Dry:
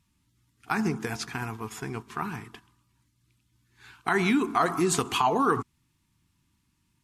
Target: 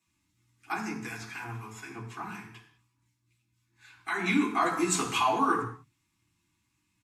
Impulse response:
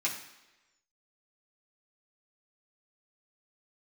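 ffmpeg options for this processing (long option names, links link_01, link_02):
-filter_complex "[0:a]asettb=1/sr,asplit=3[link_01][link_02][link_03];[link_01]atrim=end=0.724[link_04];[link_02]atrim=start=0.72:end=4.26,asetpts=PTS-STARTPTS,afade=type=in:duration=0.004:curve=qsin,afade=type=out:start_time=3.536:duration=0.004:curve=qsin,acrossover=split=1200[link_05][link_06];[link_05]aeval=exprs='val(0)*(1-0.7/2+0.7/2*cos(2*PI*4*n/s))':channel_layout=same[link_07];[link_06]aeval=exprs='val(0)*(1-0.7/2-0.7/2*cos(2*PI*4*n/s))':channel_layout=same[link_08];[link_07][link_08]amix=inputs=2:normalize=0[link_09];[link_03]atrim=start=4.256[link_10];[link_04][link_09]acrossfade=duration=0.004:curve1=hsin:curve2=qsin[link_11];[link_11][link_10]acrossfade=duration=0.004:curve1=qsin:curve2=hsin,acrossover=split=160[link_12][link_13];[link_12]adelay=60[link_14];[link_14][link_13]amix=inputs=2:normalize=0[link_15];[1:a]atrim=start_sample=2205,afade=type=out:start_time=0.27:duration=0.01,atrim=end_sample=12348[link_16];[link_15][link_16]afir=irnorm=-1:irlink=0,volume=-6.5dB"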